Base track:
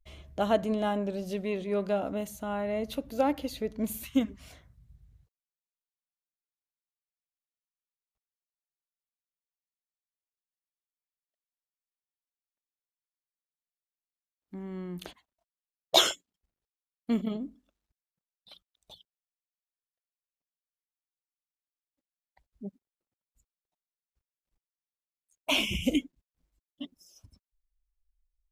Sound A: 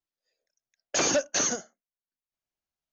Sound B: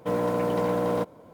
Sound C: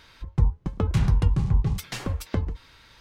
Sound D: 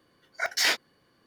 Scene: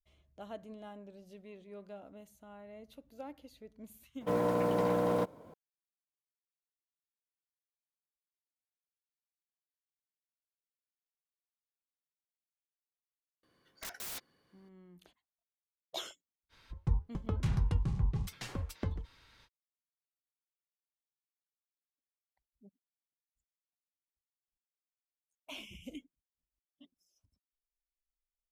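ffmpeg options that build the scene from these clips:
ffmpeg -i bed.wav -i cue0.wav -i cue1.wav -i cue2.wav -i cue3.wav -filter_complex "[0:a]volume=-19.5dB[link_01];[4:a]aeval=exprs='(mod(29.9*val(0)+1,2)-1)/29.9':channel_layout=same[link_02];[2:a]atrim=end=1.33,asetpts=PTS-STARTPTS,volume=-4.5dB,afade=type=in:duration=0.004:curve=hsin,afade=type=out:start_time=1.326:duration=0.004:curve=hsin,adelay=185661S[link_03];[link_02]atrim=end=1.26,asetpts=PTS-STARTPTS,volume=-7.5dB,afade=type=in:duration=0.004:curve=hsin,afade=type=out:start_time=1.256:duration=0.004:curve=hsin,adelay=13430[link_04];[3:a]atrim=end=3,asetpts=PTS-STARTPTS,volume=-10dB,afade=type=in:duration=0.05,afade=type=out:start_time=2.95:duration=0.05,adelay=16490[link_05];[link_01][link_03][link_04][link_05]amix=inputs=4:normalize=0" out.wav

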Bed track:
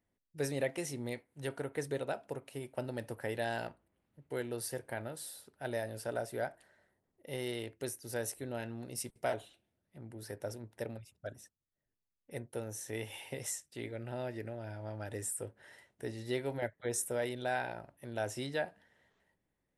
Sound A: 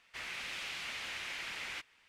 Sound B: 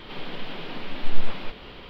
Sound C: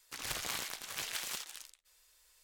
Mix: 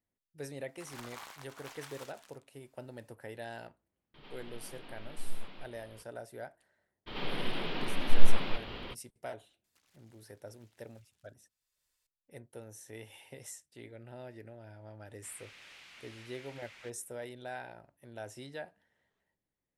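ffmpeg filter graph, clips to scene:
ffmpeg -i bed.wav -i cue0.wav -i cue1.wav -i cue2.wav -filter_complex "[3:a]asplit=2[link_01][link_02];[2:a]asplit=2[link_03][link_04];[0:a]volume=-7.5dB[link_05];[link_01]equalizer=frequency=940:width=0.71:gain=13.5[link_06];[link_02]acompressor=threshold=-49dB:ratio=20:attack=2.6:release=610:knee=1:detection=rms[link_07];[link_06]atrim=end=2.43,asetpts=PTS-STARTPTS,volume=-15dB,afade=type=in:duration=0.004:curve=hsin,afade=type=out:start_time=2.426:duration=0.004:curve=hsin,adelay=680[link_08];[link_03]atrim=end=1.89,asetpts=PTS-STARTPTS,volume=-15.5dB,afade=type=in:duration=0.004:curve=hsin,afade=type=out:start_time=1.886:duration=0.004:curve=hsin,adelay=4140[link_09];[link_04]atrim=end=1.89,asetpts=PTS-STARTPTS,volume=-0.5dB,afade=type=in:duration=0.02,afade=type=out:start_time=1.87:duration=0.02,adelay=311346S[link_10];[link_07]atrim=end=2.43,asetpts=PTS-STARTPTS,volume=-15dB,afade=type=in:duration=0.004:curve=hsin,afade=type=out:start_time=2.426:duration=0.004:curve=hsin,adelay=9640[link_11];[1:a]atrim=end=2.08,asetpts=PTS-STARTPTS,volume=-13dB,afade=type=in:duration=0.004:curve=hsin,afade=type=out:start_time=2.076:duration=0.004:curve=hsin,adelay=15090[link_12];[link_05][link_08][link_09][link_10][link_11][link_12]amix=inputs=6:normalize=0" out.wav

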